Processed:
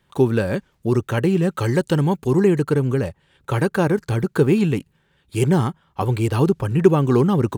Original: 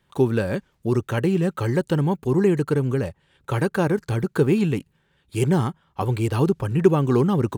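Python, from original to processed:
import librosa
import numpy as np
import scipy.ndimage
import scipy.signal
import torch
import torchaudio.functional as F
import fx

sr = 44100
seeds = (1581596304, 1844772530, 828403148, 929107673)

y = fx.peak_eq(x, sr, hz=6700.0, db=4.5, octaves=2.6, at=(1.53, 2.4))
y = y * 10.0 ** (2.5 / 20.0)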